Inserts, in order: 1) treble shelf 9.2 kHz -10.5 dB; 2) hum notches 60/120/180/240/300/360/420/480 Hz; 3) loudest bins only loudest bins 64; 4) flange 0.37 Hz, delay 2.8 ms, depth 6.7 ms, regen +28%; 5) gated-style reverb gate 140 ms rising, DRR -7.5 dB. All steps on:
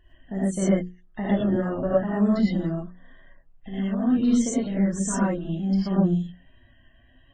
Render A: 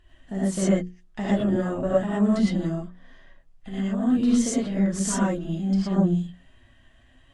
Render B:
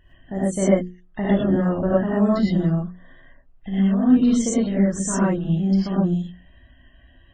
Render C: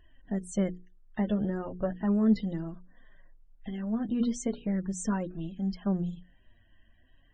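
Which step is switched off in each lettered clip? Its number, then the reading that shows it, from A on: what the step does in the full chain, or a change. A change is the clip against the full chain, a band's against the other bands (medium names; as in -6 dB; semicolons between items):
3, 4 kHz band +3.5 dB; 4, momentary loudness spread change -1 LU; 5, momentary loudness spread change +3 LU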